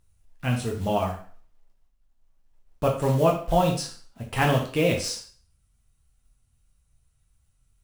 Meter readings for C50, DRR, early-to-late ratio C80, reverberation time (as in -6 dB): 7.5 dB, 0.0 dB, 11.5 dB, 0.45 s